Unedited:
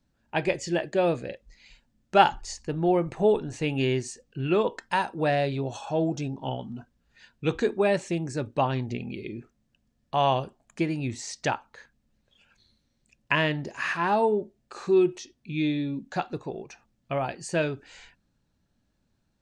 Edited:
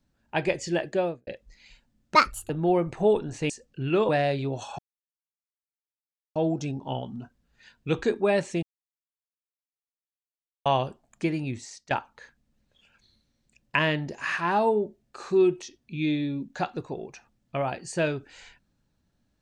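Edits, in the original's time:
0.90–1.27 s: studio fade out
2.15–2.69 s: speed 156%
3.69–4.08 s: delete
4.67–5.22 s: delete
5.92 s: insert silence 1.57 s
8.19–10.22 s: mute
10.97–11.47 s: fade out linear, to -19.5 dB

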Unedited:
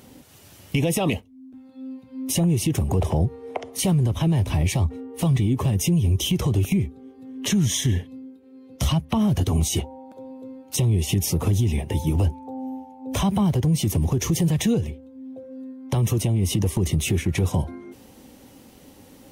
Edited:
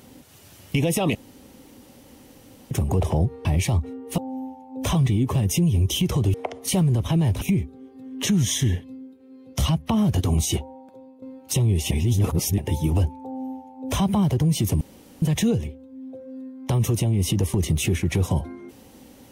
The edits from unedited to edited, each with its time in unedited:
1.15–2.71 s: room tone
3.45–4.52 s: move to 6.64 s
9.85–10.45 s: fade out, to -12.5 dB
11.14–11.81 s: reverse
12.48–13.25 s: copy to 5.25 s
14.04–14.45 s: room tone

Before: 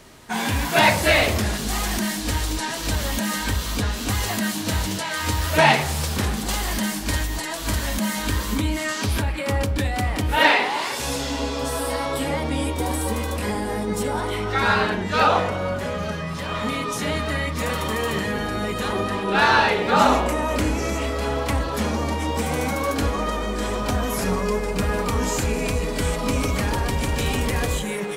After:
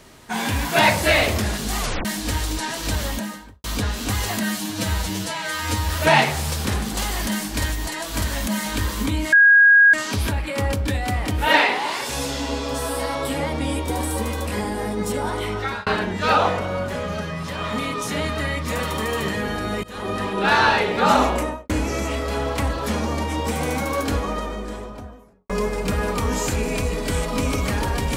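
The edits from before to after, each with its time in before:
1.80 s: tape stop 0.25 s
3.00–3.64 s: studio fade out
4.43–5.40 s: stretch 1.5×
8.84 s: add tone 1.64 kHz -8.5 dBFS 0.61 s
14.46–14.77 s: fade out
18.74–19.09 s: fade in, from -21 dB
20.30–20.60 s: studio fade out
22.91–24.40 s: studio fade out

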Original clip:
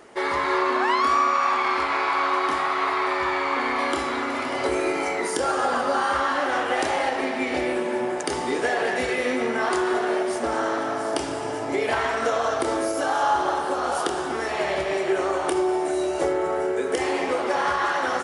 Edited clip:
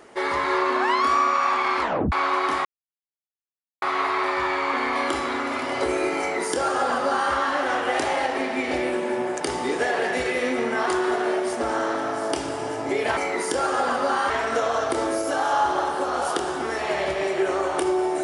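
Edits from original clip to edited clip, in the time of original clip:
1.81 s: tape stop 0.31 s
2.65 s: insert silence 1.17 s
5.02–6.15 s: copy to 12.00 s

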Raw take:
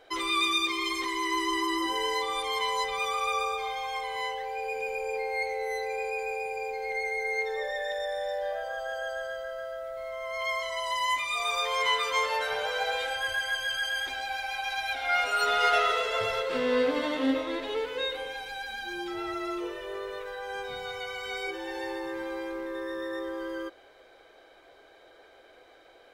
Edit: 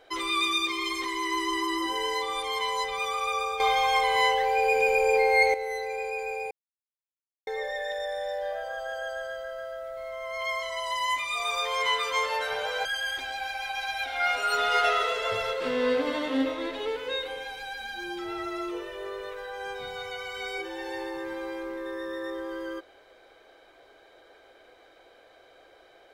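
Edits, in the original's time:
3.60–5.54 s: gain +10 dB
6.51–7.47 s: mute
12.85–13.74 s: delete

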